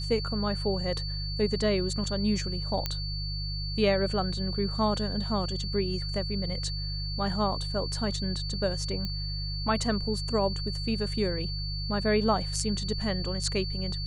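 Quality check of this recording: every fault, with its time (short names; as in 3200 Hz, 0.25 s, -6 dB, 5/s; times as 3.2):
hum 50 Hz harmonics 3 -34 dBFS
tone 4500 Hz -36 dBFS
2.86 pop -13 dBFS
9.05 pop -20 dBFS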